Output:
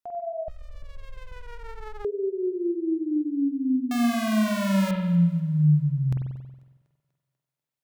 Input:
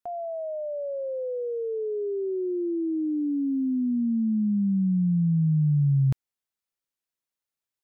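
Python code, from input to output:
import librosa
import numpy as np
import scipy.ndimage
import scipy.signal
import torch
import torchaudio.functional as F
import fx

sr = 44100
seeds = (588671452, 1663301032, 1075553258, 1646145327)

p1 = fx.clip_1bit(x, sr, at=(3.91, 4.91))
p2 = p1 + fx.echo_thinned(p1, sr, ms=245, feedback_pct=57, hz=170.0, wet_db=-24.0, dry=0)
p3 = fx.rev_spring(p2, sr, rt60_s=1.1, pass_ms=(46,), chirp_ms=45, drr_db=1.0)
p4 = fx.running_max(p3, sr, window=65, at=(0.48, 2.05))
y = p4 * 10.0 ** (-2.0 / 20.0)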